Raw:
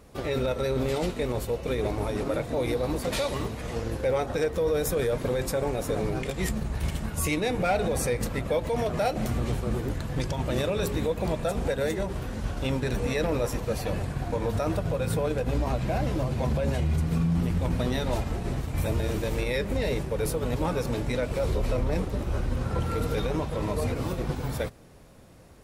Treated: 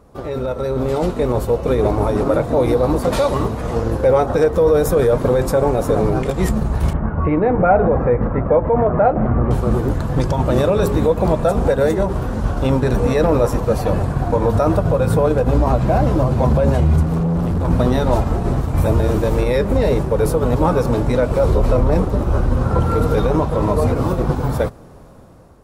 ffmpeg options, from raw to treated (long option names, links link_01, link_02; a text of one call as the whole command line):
ffmpeg -i in.wav -filter_complex "[0:a]asettb=1/sr,asplit=3[link_01][link_02][link_03];[link_01]atrim=end=6.934[link_04];[link_02]atrim=start=6.93:end=9.51,asetpts=PTS-STARTPTS,afade=type=in:duration=0.004:curve=qsin,afade=type=out:start_time=2.576:duration=0.004:curve=qsin,lowpass=frequency=1900:width=0.5412,lowpass=frequency=1900:width=1.3066[link_05];[link_03]atrim=start=9.506[link_06];[link_04][link_05]acrossfade=duration=0.004:curve1=hsin:curve2=qsin[link_07];[link_07][link_06]acrossfade=duration=0.004:curve1=qsin:curve2=hsin,asettb=1/sr,asplit=3[link_08][link_09][link_10];[link_08]atrim=end=17.034[link_11];[link_09]atrim=start=17.03:end=17.68,asetpts=PTS-STARTPTS,afade=type=in:duration=0.004:curve=qsin,afade=type=out:start_time=0.646:duration=0.004:curve=qsin,asoftclip=type=hard:threshold=-27.5dB[link_12];[link_10]atrim=start=17.676[link_13];[link_11][link_12]acrossfade=duration=0.004:curve1=hsin:curve2=qsin[link_14];[link_14][link_13]acrossfade=duration=0.004:curve1=qsin:curve2=hsin,highshelf=frequency=1600:width_type=q:width=1.5:gain=-7.5,dynaudnorm=framelen=380:gausssize=5:maxgain=8dB,volume=3.5dB" out.wav